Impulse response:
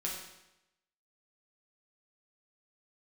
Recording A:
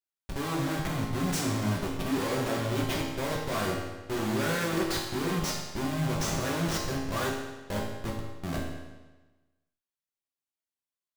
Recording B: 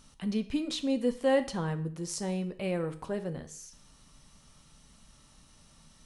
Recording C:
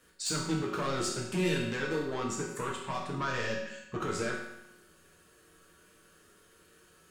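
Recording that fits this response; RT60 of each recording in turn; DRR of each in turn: C; 1.2, 0.50, 0.90 seconds; −3.5, 8.5, −4.0 decibels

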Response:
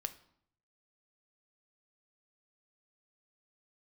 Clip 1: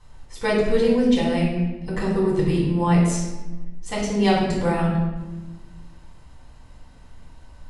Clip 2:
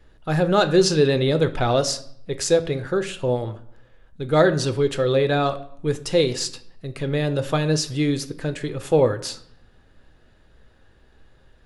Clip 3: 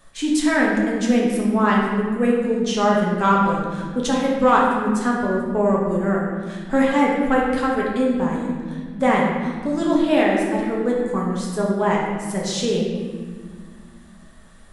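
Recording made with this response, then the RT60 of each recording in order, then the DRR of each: 2; 1.2, 0.65, 1.8 seconds; −5.5, 9.0, −4.0 decibels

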